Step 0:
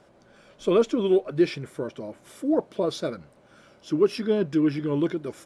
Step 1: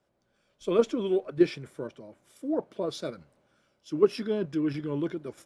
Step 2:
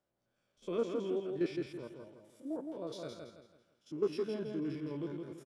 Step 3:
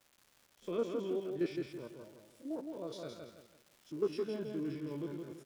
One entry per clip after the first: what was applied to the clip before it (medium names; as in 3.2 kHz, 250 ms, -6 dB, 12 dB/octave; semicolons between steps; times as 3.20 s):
in parallel at 0 dB: level held to a coarse grid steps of 16 dB; on the sum: three bands expanded up and down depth 40%; trim -8 dB
spectrogram pixelated in time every 50 ms; feedback delay 165 ms, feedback 36%, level -4.5 dB; trim -9 dB
crackle 450 per s -51 dBFS; trim -1 dB